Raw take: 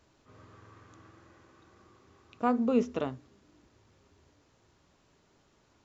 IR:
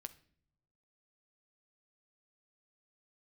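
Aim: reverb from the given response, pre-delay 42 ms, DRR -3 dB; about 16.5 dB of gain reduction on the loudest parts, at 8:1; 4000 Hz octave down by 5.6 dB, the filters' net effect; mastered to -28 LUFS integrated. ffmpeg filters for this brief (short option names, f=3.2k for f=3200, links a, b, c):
-filter_complex "[0:a]equalizer=f=4k:t=o:g=-8.5,acompressor=threshold=-38dB:ratio=8,asplit=2[a][b];[1:a]atrim=start_sample=2205,adelay=42[c];[b][c]afir=irnorm=-1:irlink=0,volume=8dB[d];[a][d]amix=inputs=2:normalize=0,volume=14dB"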